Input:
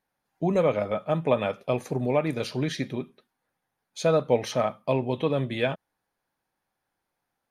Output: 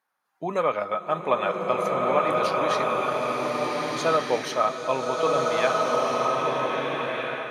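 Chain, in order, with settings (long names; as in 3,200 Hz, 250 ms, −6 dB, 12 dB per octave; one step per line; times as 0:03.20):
high-pass filter 590 Hz 6 dB per octave
parametric band 1,200 Hz +10.5 dB 0.76 octaves
slow-attack reverb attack 1,620 ms, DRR −3 dB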